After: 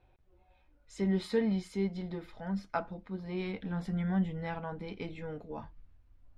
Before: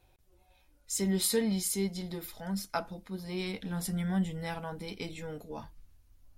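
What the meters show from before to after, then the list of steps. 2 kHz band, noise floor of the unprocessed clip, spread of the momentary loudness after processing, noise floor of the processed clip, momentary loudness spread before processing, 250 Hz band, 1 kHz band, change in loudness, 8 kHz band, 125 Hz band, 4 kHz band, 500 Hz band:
-1.5 dB, -65 dBFS, 12 LU, -66 dBFS, 14 LU, 0.0 dB, 0.0 dB, -1.5 dB, under -20 dB, 0.0 dB, -10.5 dB, 0.0 dB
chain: LPF 2300 Hz 12 dB/oct

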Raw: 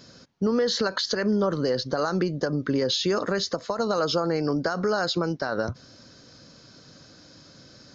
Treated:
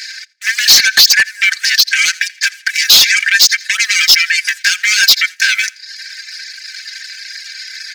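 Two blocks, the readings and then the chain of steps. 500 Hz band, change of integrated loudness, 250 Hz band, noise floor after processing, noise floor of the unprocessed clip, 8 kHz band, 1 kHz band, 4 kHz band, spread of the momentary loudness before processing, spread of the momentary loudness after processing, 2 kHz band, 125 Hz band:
under -15 dB, +16.5 dB, under -15 dB, -40 dBFS, -52 dBFS, n/a, -2.0 dB, +21.5 dB, 5 LU, 21 LU, +23.5 dB, under -15 dB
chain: Wiener smoothing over 15 samples; in parallel at +1.5 dB: compressor 10:1, threshold -32 dBFS, peak gain reduction 13 dB; on the sum: sample leveller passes 2; rippled Chebyshev high-pass 1600 Hz, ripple 6 dB; comb 3.9 ms, depth 84%; on a send: feedback echo 84 ms, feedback 23%, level -16.5 dB; on the sum: overloaded stage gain 23 dB; reverb removal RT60 0.68 s; maximiser +29.5 dB; gain -1 dB

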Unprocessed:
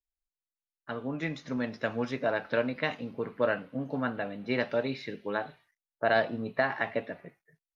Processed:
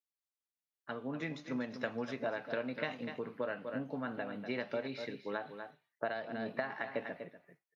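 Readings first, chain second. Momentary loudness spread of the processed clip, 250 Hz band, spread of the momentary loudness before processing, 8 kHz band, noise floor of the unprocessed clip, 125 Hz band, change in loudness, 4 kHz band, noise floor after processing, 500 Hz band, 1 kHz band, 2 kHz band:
8 LU, -6.5 dB, 9 LU, n/a, under -85 dBFS, -9.0 dB, -8.0 dB, -7.5 dB, under -85 dBFS, -8.0 dB, -8.5 dB, -8.5 dB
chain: on a send: echo 0.244 s -11.5 dB; on the sum: compressor 6:1, threshold -29 dBFS, peak gain reduction 9 dB; HPF 130 Hz; noise-modulated level, depth 55%; gain -1.5 dB

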